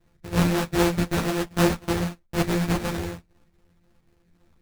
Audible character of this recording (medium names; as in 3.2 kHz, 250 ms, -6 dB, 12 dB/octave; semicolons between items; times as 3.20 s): a buzz of ramps at a fixed pitch in blocks of 256 samples; phasing stages 4, 3.9 Hz, lowest notch 690–3500 Hz; aliases and images of a low sample rate 2.1 kHz, jitter 20%; a shimmering, thickened sound